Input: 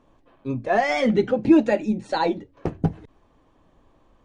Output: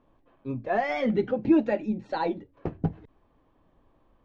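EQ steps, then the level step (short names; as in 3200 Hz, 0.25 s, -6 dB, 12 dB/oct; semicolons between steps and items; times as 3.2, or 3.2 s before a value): air absorption 180 m; -5.0 dB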